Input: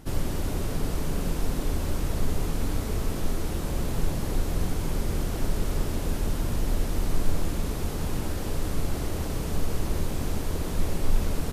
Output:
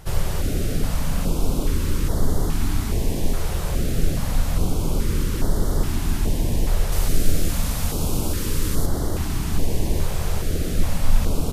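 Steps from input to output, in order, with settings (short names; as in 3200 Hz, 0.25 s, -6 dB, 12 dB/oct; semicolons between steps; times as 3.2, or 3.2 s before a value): 6.92–8.86 high shelf 4000 Hz +6.5 dB; stepped notch 2.4 Hz 270–2500 Hz; gain +6 dB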